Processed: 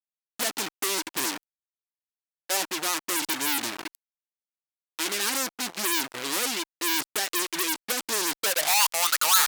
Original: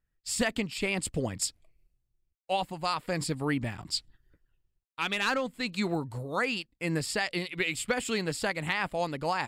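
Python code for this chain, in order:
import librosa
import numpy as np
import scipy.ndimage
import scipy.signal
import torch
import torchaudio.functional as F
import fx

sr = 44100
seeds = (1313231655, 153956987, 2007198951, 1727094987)

y = fx.filter_sweep_bandpass(x, sr, from_hz=320.0, to_hz=1300.0, start_s=8.3, end_s=8.97, q=7.8)
y = fx.fuzz(y, sr, gain_db=60.0, gate_db=-59.0)
y = np.diff(y, prepend=0.0)
y = y * 10.0 ** (5.5 / 20.0)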